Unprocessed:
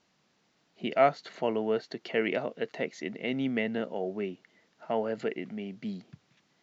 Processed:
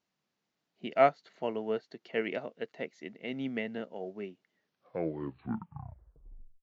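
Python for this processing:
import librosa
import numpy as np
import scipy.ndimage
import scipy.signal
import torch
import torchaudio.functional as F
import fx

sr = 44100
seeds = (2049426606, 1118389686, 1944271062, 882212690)

y = fx.tape_stop_end(x, sr, length_s=2.14)
y = fx.upward_expand(y, sr, threshold_db=-46.0, expansion=1.5)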